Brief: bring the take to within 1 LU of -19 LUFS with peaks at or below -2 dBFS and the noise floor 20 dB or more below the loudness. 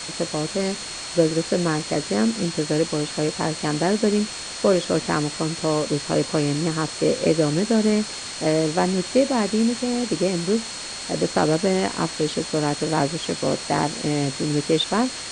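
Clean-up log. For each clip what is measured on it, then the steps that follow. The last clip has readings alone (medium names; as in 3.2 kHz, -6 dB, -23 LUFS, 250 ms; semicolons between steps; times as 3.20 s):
steady tone 4.3 kHz; tone level -36 dBFS; noise floor -33 dBFS; noise floor target -43 dBFS; loudness -22.5 LUFS; peak level -5.0 dBFS; loudness target -19.0 LUFS
-> band-stop 4.3 kHz, Q 30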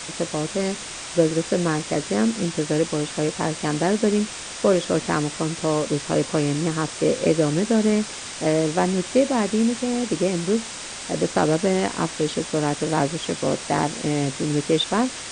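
steady tone not found; noise floor -35 dBFS; noise floor target -43 dBFS
-> noise reduction 8 dB, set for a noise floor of -35 dBFS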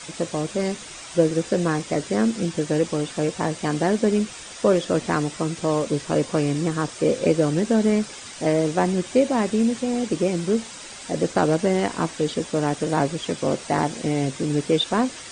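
noise floor -39 dBFS; noise floor target -43 dBFS
-> noise reduction 6 dB, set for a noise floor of -39 dBFS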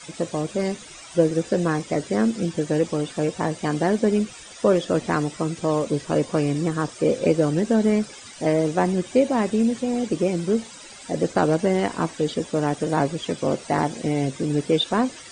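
noise floor -42 dBFS; noise floor target -43 dBFS
-> noise reduction 6 dB, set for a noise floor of -42 dBFS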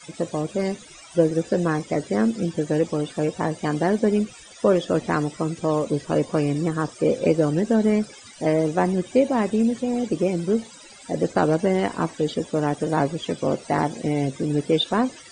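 noise floor -45 dBFS; loudness -23.5 LUFS; peak level -5.5 dBFS; loudness target -19.0 LUFS
-> trim +4.5 dB; peak limiter -2 dBFS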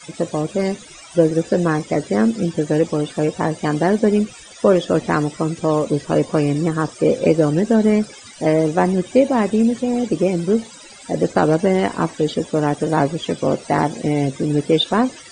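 loudness -19.0 LUFS; peak level -2.0 dBFS; noise floor -41 dBFS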